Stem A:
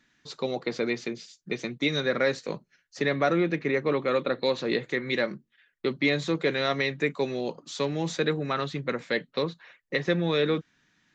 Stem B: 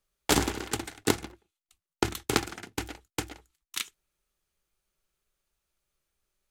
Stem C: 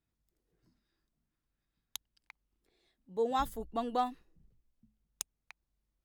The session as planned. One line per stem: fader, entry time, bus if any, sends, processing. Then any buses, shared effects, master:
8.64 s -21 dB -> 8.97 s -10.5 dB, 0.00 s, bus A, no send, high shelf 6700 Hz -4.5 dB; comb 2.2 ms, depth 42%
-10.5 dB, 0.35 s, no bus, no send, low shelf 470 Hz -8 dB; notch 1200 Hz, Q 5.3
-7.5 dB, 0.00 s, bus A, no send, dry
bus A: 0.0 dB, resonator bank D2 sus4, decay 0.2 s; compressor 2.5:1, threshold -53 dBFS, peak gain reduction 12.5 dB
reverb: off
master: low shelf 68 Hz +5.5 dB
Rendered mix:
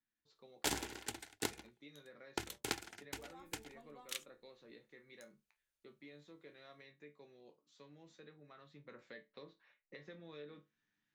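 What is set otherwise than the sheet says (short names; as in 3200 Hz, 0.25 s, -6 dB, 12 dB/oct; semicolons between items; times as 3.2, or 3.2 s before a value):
stem A: missing comb 2.2 ms, depth 42%; stem C -7.5 dB -> -14.5 dB; master: missing low shelf 68 Hz +5.5 dB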